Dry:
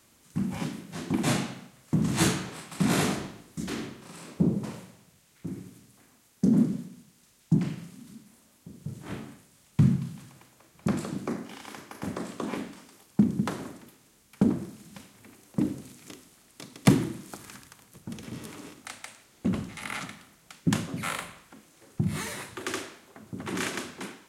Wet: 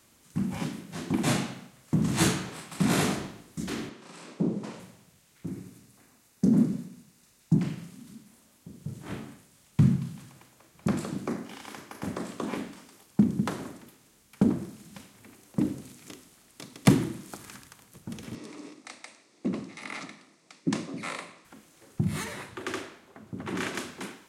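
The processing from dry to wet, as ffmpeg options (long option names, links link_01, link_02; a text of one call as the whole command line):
ffmpeg -i in.wav -filter_complex "[0:a]asettb=1/sr,asplit=3[link_01][link_02][link_03];[link_01]atrim=end=3.894[link_04];[link_02]atrim=start=3.89:end=4.8,asetpts=PTS-STARTPTS,afade=type=in:duration=0.004:curve=qsin,afade=type=out:start_time=0.906:duration=0.004:curve=qsin,highpass=210,lowpass=7500[link_05];[link_03]atrim=start=4.796[link_06];[link_04][link_05]acrossfade=duration=0.004:curve1=hsin:curve2=qsin[link_07];[link_07][link_06]acrossfade=duration=0.004:curve1=qsin:curve2=hsin,asettb=1/sr,asplit=3[link_08][link_09][link_10];[link_08]atrim=end=5.504[link_11];[link_09]atrim=start=5.5:end=7.59,asetpts=PTS-STARTPTS,afade=type=in:duration=0.004:curve=qsin,afade=type=out:start_time=2.086:duration=0.004:curve=qsin,bandreject=frequency=3200:width=12[link_12];[link_10]atrim=start=7.586[link_13];[link_11][link_12]acrossfade=duration=0.004:curve1=hsin:curve2=qsin[link_14];[link_14][link_13]acrossfade=duration=0.004:curve1=qsin:curve2=hsin,asettb=1/sr,asplit=3[link_15][link_16][link_17];[link_15]atrim=end=18.354[link_18];[link_16]atrim=start=18.35:end=21.45,asetpts=PTS-STARTPTS,afade=type=in:duration=0.004:curve=qsin,afade=type=out:start_time=3.096:duration=0.004:curve=qsin,highpass=230,equalizer=frequency=310:width_type=q:width=4:gain=5,equalizer=frequency=830:width_type=q:width=4:gain=-4,equalizer=frequency=1500:width_type=q:width=4:gain=-9,equalizer=frequency=3100:width_type=q:width=4:gain=-8,equalizer=frequency=7000:width_type=q:width=4:gain=-5,lowpass=frequency=8100:width=0.5412,lowpass=frequency=8100:width=1.3066[link_19];[link_17]atrim=start=21.446[link_20];[link_18][link_19]acrossfade=duration=0.004:curve1=hsin:curve2=qsin[link_21];[link_21][link_20]acrossfade=duration=0.004:curve1=qsin:curve2=hsin,asettb=1/sr,asplit=3[link_22][link_23][link_24];[link_22]atrim=end=22.244[link_25];[link_23]atrim=start=22.24:end=23.75,asetpts=PTS-STARTPTS,afade=type=in:duration=0.004:curve=qsin,afade=type=out:start_time=1.506:duration=0.004:curve=qsin,highshelf=frequency=4700:gain=-9[link_26];[link_24]atrim=start=23.746[link_27];[link_25][link_26]acrossfade=duration=0.004:curve1=hsin:curve2=qsin[link_28];[link_28][link_27]acrossfade=duration=0.004:curve1=qsin:curve2=hsin" out.wav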